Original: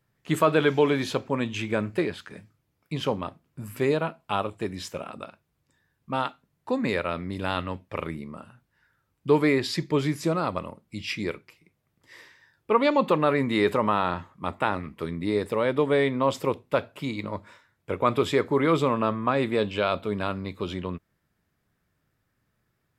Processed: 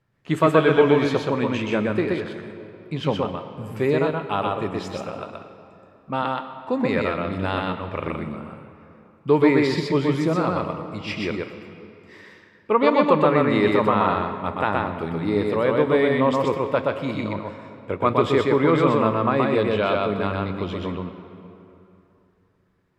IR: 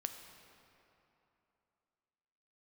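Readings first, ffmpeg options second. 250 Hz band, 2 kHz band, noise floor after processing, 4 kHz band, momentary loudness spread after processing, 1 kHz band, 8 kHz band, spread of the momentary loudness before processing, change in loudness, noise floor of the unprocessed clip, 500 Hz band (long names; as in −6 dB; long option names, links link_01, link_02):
+5.0 dB, +3.5 dB, −58 dBFS, +1.0 dB, 16 LU, +4.5 dB, can't be measured, 14 LU, +4.5 dB, −75 dBFS, +5.0 dB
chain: -filter_complex "[0:a]aemphasis=mode=reproduction:type=50fm,asplit=2[link_01][link_02];[1:a]atrim=start_sample=2205,adelay=125[link_03];[link_02][link_03]afir=irnorm=-1:irlink=0,volume=0dB[link_04];[link_01][link_04]amix=inputs=2:normalize=0,volume=2dB"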